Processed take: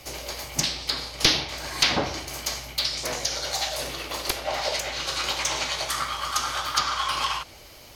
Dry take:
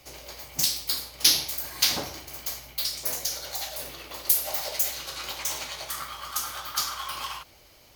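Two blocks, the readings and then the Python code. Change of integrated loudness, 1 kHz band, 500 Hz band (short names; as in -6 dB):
+1.0 dB, +8.5 dB, +8.5 dB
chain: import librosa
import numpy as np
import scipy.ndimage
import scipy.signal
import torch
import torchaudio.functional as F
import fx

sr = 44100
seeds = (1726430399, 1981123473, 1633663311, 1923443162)

y = np.minimum(x, 2.0 * 10.0 ** (-11.5 / 20.0) - x)
y = fx.env_lowpass_down(y, sr, base_hz=2800.0, full_db=-23.5)
y = y * 10.0 ** (8.5 / 20.0)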